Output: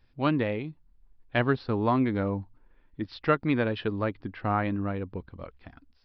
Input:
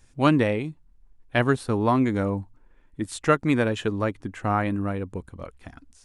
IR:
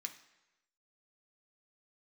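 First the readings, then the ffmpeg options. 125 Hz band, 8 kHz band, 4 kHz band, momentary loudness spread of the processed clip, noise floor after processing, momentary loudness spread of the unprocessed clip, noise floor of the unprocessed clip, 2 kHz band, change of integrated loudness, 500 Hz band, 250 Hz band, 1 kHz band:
−4.0 dB, below −30 dB, −4.5 dB, 14 LU, −64 dBFS, 15 LU, −58 dBFS, −4.0 dB, −4.0 dB, −4.0 dB, −4.0 dB, −4.0 dB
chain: -af "dynaudnorm=framelen=160:gausssize=7:maxgain=3.5dB,aresample=11025,aresample=44100,volume=-6.5dB"

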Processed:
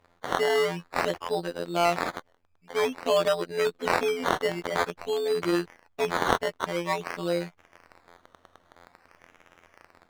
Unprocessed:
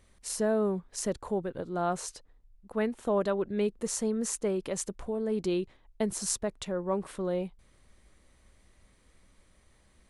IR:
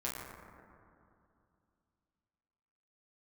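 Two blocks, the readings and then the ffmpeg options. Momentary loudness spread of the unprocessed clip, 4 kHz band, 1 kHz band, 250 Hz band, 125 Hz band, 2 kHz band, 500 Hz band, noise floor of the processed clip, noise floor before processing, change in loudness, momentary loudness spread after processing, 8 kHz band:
7 LU, +10.0 dB, +10.0 dB, −1.5 dB, +0.5 dB, +14.0 dB, +4.5 dB, −66 dBFS, −64 dBFS, +4.5 dB, 7 LU, −7.0 dB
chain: -filter_complex "[0:a]acrossover=split=2200[link_01][link_02];[link_02]dynaudnorm=framelen=200:gausssize=3:maxgain=9dB[link_03];[link_01][link_03]amix=inputs=2:normalize=0,afftfilt=real='hypot(re,im)*cos(PI*b)':imag='0':win_size=2048:overlap=0.75,acrusher=samples=14:mix=1:aa=0.000001:lfo=1:lforange=8.4:lforate=0.5,asplit=2[link_04][link_05];[link_05]highpass=frequency=720:poles=1,volume=18dB,asoftclip=type=tanh:threshold=-5dB[link_06];[link_04][link_06]amix=inputs=2:normalize=0,lowpass=frequency=2300:poles=1,volume=-6dB"

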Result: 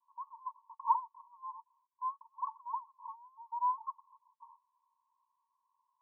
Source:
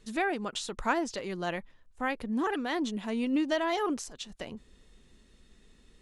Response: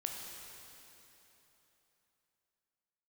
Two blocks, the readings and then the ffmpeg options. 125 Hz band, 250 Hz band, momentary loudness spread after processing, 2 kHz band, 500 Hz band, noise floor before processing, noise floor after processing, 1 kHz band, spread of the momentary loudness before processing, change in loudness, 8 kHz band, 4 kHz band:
below −40 dB, below −40 dB, 17 LU, below −40 dB, below −40 dB, −61 dBFS, −85 dBFS, −0.5 dB, 12 LU, −7.0 dB, below −35 dB, below −40 dB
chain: -af "asuperpass=centerf=1000:order=20:qfactor=4.5,volume=5dB"

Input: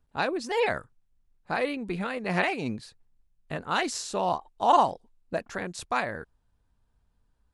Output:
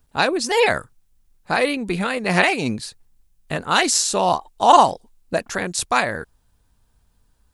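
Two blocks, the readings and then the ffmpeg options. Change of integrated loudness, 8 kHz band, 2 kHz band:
+9.0 dB, +16.5 dB, +10.0 dB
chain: -af "highshelf=frequency=4400:gain=11.5,volume=8dB"

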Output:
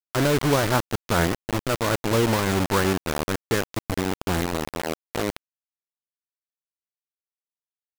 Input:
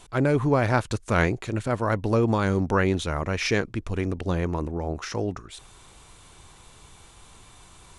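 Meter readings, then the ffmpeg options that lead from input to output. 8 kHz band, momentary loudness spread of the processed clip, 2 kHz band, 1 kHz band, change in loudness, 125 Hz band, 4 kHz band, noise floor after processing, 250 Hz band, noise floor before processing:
+8.0 dB, 8 LU, +1.0 dB, +2.0 dB, +1.0 dB, −1.5 dB, +6.5 dB, below −85 dBFS, +0.5 dB, −52 dBFS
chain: -filter_complex "[0:a]acrossover=split=6100[link_01][link_02];[link_02]acompressor=threshold=-54dB:ratio=4:attack=1:release=60[link_03];[link_01][link_03]amix=inputs=2:normalize=0,asuperstop=centerf=3000:order=4:qfactor=1,acrusher=bits=3:mix=0:aa=0.000001"

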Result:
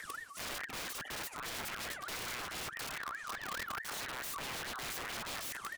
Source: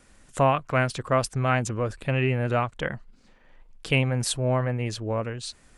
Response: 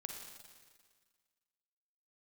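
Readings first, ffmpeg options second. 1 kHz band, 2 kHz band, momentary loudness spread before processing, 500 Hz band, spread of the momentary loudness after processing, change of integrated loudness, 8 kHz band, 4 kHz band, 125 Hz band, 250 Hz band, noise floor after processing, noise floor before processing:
−13.5 dB, −8.5 dB, 10 LU, −23.0 dB, 2 LU, −14.0 dB, −6.0 dB, −6.0 dB, −30.0 dB, −22.0 dB, −50 dBFS, −57 dBFS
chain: -filter_complex "[0:a]bandreject=frequency=50:width_type=h:width=6,bandreject=frequency=100:width_type=h:width=6,bandreject=frequency=150:width_type=h:width=6,bandreject=frequency=200:width_type=h:width=6,acrossover=split=3600[link_01][link_02];[link_02]acompressor=mode=upward:threshold=-57dB:ratio=2.5[link_03];[link_01][link_03]amix=inputs=2:normalize=0,alimiter=limit=-17dB:level=0:latency=1:release=97,areverse,acompressor=threshold=-38dB:ratio=6,areverse,asplit=2[link_04][link_05];[link_05]adelay=804,lowpass=frequency=1300:poles=1,volume=-17.5dB,asplit=2[link_06][link_07];[link_07]adelay=804,lowpass=frequency=1300:poles=1,volume=0.49,asplit=2[link_08][link_09];[link_09]adelay=804,lowpass=frequency=1300:poles=1,volume=0.49,asplit=2[link_10][link_11];[link_11]adelay=804,lowpass=frequency=1300:poles=1,volume=0.49[link_12];[link_04][link_06][link_08][link_10][link_12]amix=inputs=5:normalize=0,asoftclip=type=tanh:threshold=-35dB,aphaser=in_gain=1:out_gain=1:delay=3.5:decay=0.8:speed=1.8:type=triangular,aeval=exprs='(mod(79.4*val(0)+1,2)-1)/79.4':channel_layout=same,aeval=exprs='val(0)*sin(2*PI*1500*n/s+1500*0.25/4.7*sin(2*PI*4.7*n/s))':channel_layout=same,volume=4.5dB"

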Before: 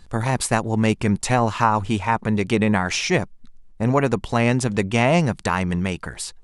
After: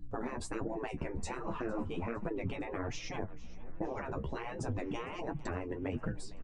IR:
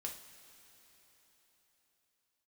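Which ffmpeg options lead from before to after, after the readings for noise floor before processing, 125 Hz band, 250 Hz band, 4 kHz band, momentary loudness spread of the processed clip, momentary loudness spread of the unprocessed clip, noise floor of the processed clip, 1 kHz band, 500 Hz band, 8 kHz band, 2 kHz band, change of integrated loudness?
−47 dBFS, −19.5 dB, −18.0 dB, −21.0 dB, 4 LU, 6 LU, −43 dBFS, −20.0 dB, −16.0 dB, −21.5 dB, −20.0 dB, −18.5 dB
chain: -filter_complex "[0:a]afftdn=noise_reduction=14:noise_floor=-33,aeval=exprs='val(0)+0.002*(sin(2*PI*60*n/s)+sin(2*PI*2*60*n/s)/2+sin(2*PI*3*60*n/s)/3+sin(2*PI*4*60*n/s)/4+sin(2*PI*5*60*n/s)/5)':channel_layout=same,flanger=delay=6.7:depth=8.5:regen=47:speed=0.36:shape=sinusoidal,afftfilt=real='re*lt(hypot(re,im),0.141)':imag='im*lt(hypot(re,im),0.141)':win_size=1024:overlap=0.75,lowpass=frequency=8000:width=0.5412,lowpass=frequency=8000:width=1.3066,highshelf=frequency=2200:gain=-7.5,asplit=2[link_01][link_02];[link_02]asplit=4[link_03][link_04][link_05][link_06];[link_03]adelay=457,afreqshift=34,volume=-21.5dB[link_07];[link_04]adelay=914,afreqshift=68,volume=-26.9dB[link_08];[link_05]adelay=1371,afreqshift=102,volume=-32.2dB[link_09];[link_06]adelay=1828,afreqshift=136,volume=-37.6dB[link_10];[link_07][link_08][link_09][link_10]amix=inputs=4:normalize=0[link_11];[link_01][link_11]amix=inputs=2:normalize=0,acompressor=threshold=-34dB:ratio=12,tiltshelf=frequency=860:gain=8.5,flanger=delay=6:depth=7.5:regen=23:speed=1.3:shape=sinusoidal,acrossover=split=210|2700[link_12][link_13][link_14];[link_14]crystalizer=i=1:c=0[link_15];[link_12][link_13][link_15]amix=inputs=3:normalize=0,volume=2.5dB"

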